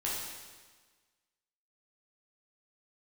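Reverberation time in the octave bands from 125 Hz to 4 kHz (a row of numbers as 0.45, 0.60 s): 1.4, 1.4, 1.4, 1.4, 1.4, 1.4 s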